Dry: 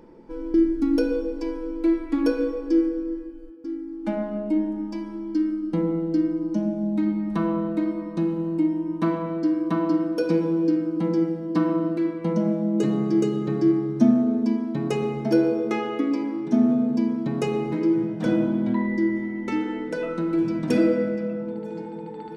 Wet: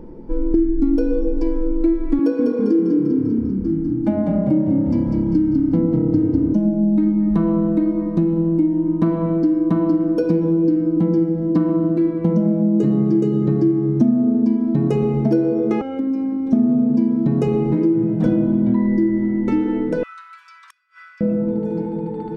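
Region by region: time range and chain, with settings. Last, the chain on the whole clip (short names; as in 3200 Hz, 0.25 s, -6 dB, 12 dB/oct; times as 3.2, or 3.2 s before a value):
2.19–6.53 HPF 150 Hz 24 dB/oct + frequency-shifting echo 0.198 s, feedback 59%, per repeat -34 Hz, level -4.5 dB
15.81–16.53 robotiser 268 Hz + HPF 48 Hz + compressor 4:1, threshold -29 dBFS
20.03–21.21 Chebyshev high-pass 1100 Hz, order 6 + flipped gate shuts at -30 dBFS, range -31 dB
whole clip: low shelf 120 Hz +11 dB; compressor 4:1, threshold -23 dBFS; tilt shelf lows +6.5 dB; gain +3.5 dB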